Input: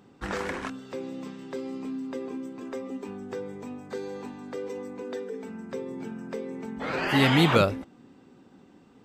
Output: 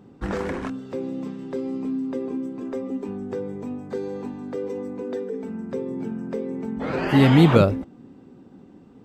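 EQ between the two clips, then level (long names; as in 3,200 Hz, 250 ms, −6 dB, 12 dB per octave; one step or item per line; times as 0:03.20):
tilt shelving filter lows +6 dB, about 770 Hz
+2.5 dB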